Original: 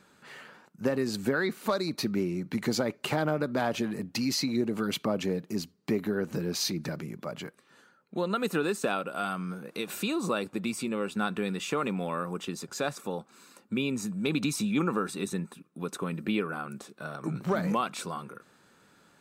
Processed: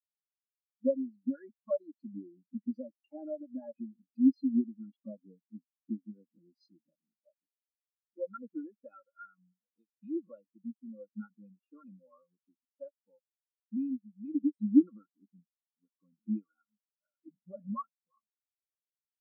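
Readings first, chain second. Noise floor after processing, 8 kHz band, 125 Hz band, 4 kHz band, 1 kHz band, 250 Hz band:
below −85 dBFS, below −40 dB, below −15 dB, below −40 dB, −17.5 dB, −2.5 dB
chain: comb filter 3.6 ms, depth 60%
every bin expanded away from the loudest bin 4 to 1
level +2 dB

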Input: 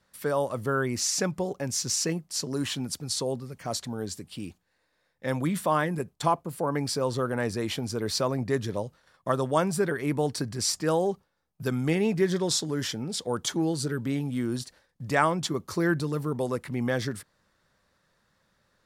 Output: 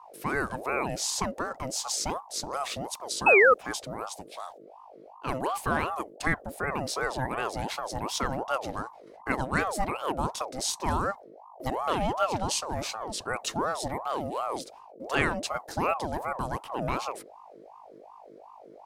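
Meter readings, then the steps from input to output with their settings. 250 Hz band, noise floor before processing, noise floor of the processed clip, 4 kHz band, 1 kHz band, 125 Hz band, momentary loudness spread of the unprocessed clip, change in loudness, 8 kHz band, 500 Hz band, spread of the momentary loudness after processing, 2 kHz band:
−7.0 dB, −73 dBFS, −50 dBFS, −3.0 dB, +3.0 dB, −7.0 dB, 10 LU, −0.5 dB, −3.0 dB, −2.0 dB, 10 LU, +6.0 dB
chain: mains hum 50 Hz, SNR 18 dB
sound drawn into the spectrogram fall, 0:03.26–0:03.54, 830–1,800 Hz −14 dBFS
ring modulator whose carrier an LFO sweeps 690 Hz, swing 45%, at 2.7 Hz

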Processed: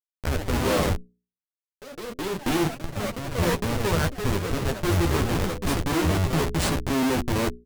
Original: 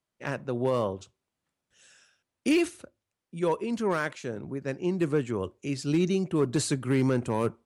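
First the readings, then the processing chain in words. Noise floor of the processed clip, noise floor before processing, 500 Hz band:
below −85 dBFS, below −85 dBFS, +1.5 dB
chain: sub-octave generator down 1 octave, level −2 dB
comparator with hysteresis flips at −28.5 dBFS
mains-hum notches 60/120/180/240/300/360/420 Hz
double-tracking delay 12 ms −6.5 dB
harmonic generator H 4 −34 dB, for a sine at −19.5 dBFS
delay with pitch and tempo change per echo 118 ms, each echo +3 semitones, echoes 3, each echo −6 dB
level +5 dB

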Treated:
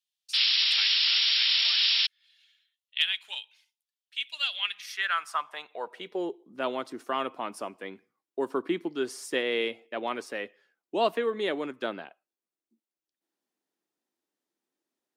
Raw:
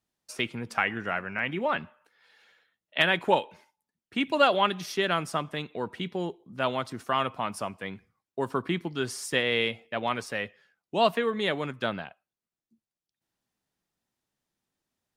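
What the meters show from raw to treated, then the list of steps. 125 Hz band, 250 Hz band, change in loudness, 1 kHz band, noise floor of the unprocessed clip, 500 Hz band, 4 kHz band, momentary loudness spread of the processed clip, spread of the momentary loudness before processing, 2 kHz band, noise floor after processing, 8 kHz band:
−17.0 dB, −4.0 dB, +2.0 dB, −6.0 dB, below −85 dBFS, −3.0 dB, +9.0 dB, 18 LU, 12 LU, −2.0 dB, below −85 dBFS, −3.0 dB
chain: sound drawn into the spectrogram noise, 0:00.33–0:02.07, 360–5,600 Hz −23 dBFS
high-pass filter sweep 3,200 Hz → 320 Hz, 0:04.48–0:06.38
level −4.5 dB

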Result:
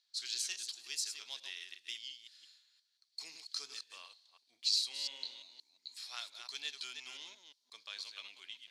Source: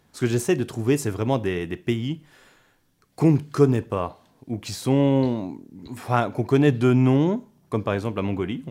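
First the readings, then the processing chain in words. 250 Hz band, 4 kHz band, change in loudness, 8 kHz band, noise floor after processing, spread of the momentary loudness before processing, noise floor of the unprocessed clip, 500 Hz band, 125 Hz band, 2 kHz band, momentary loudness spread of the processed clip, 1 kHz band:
below −40 dB, +2.0 dB, −17.0 dB, −3.5 dB, −79 dBFS, 14 LU, −63 dBFS, below −40 dB, below −40 dB, −14.5 dB, 17 LU, −29.0 dB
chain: delay that plays each chunk backwards 175 ms, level −7 dB
four-pole ladder band-pass 4,700 Hz, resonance 70%
one half of a high-frequency compander decoder only
level +8.5 dB

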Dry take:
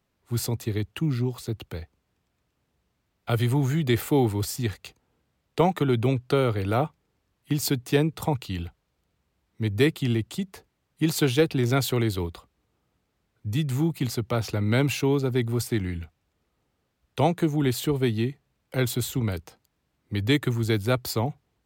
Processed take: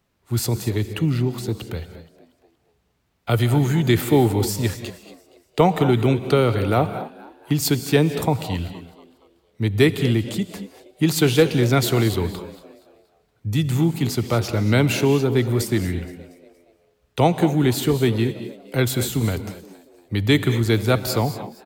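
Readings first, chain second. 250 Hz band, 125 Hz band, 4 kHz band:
+5.5 dB, +5.0 dB, +5.5 dB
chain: echo with shifted repeats 235 ms, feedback 45%, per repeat +84 Hz, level −19 dB
reverb whose tail is shaped and stops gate 250 ms rising, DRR 10.5 dB
level +5 dB

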